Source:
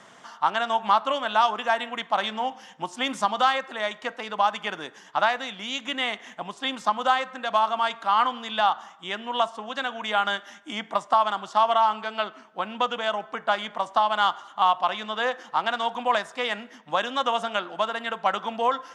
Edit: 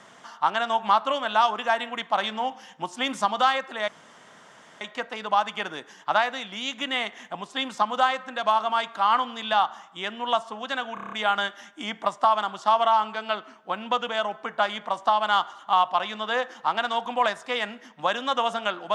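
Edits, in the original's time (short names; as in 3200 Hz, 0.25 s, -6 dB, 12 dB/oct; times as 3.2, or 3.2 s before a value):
3.88 insert room tone 0.93 s
10.01 stutter 0.03 s, 7 plays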